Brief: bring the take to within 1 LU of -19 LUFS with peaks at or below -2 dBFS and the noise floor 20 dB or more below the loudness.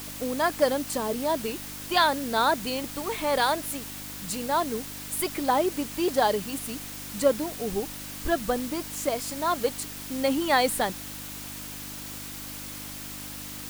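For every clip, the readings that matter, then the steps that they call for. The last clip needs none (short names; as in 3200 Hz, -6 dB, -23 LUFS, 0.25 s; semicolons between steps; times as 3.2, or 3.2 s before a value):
hum 50 Hz; harmonics up to 300 Hz; hum level -43 dBFS; noise floor -39 dBFS; noise floor target -48 dBFS; loudness -28.0 LUFS; peak -8.5 dBFS; loudness target -19.0 LUFS
-> de-hum 50 Hz, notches 6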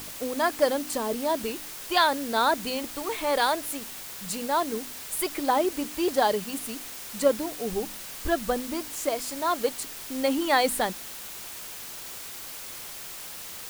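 hum none; noise floor -40 dBFS; noise floor target -48 dBFS
-> denoiser 8 dB, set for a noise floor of -40 dBFS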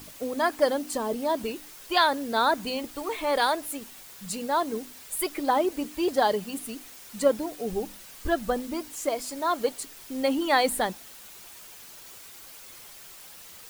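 noise floor -47 dBFS; noise floor target -48 dBFS
-> denoiser 6 dB, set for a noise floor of -47 dBFS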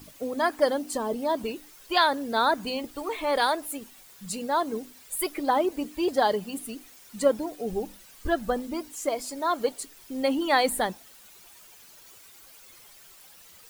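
noise floor -52 dBFS; loudness -27.5 LUFS; peak -9.0 dBFS; loudness target -19.0 LUFS
-> gain +8.5 dB; limiter -2 dBFS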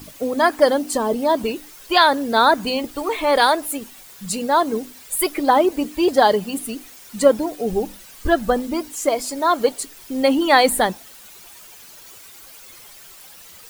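loudness -19.0 LUFS; peak -2.0 dBFS; noise floor -43 dBFS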